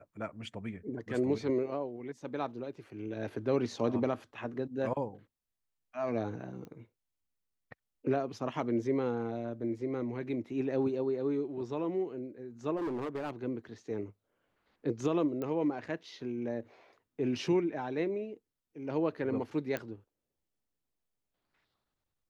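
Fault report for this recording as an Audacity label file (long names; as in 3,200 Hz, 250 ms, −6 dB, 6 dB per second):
6.650000	6.650000	click −35 dBFS
12.760000	13.310000	clipping −32 dBFS
15.420000	15.420000	click −25 dBFS
19.770000	19.770000	click −21 dBFS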